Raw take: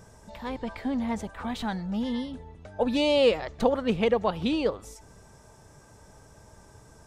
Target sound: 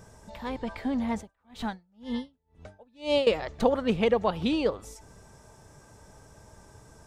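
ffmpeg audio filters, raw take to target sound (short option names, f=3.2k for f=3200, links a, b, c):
-filter_complex "[0:a]asettb=1/sr,asplit=3[a][b][c];[a]atrim=end=1.154[d];[b]atrim=start=1.15:end=3.27,asetpts=PTS-STARTPTS,afade=t=in:d=0.004:c=qsin,afade=t=out:st=2.116:d=0.004:c=qsin,aeval=exprs='val(0)*pow(10,-37*(0.5-0.5*cos(2*PI*2*n/s))/20)':c=same[e];[c]atrim=start=3.266[f];[d][e]acrossfade=d=0.004:c1=hsin:c2=qsin[g];[g][f]acrossfade=d=0.004:c1=qsin:c2=hsin"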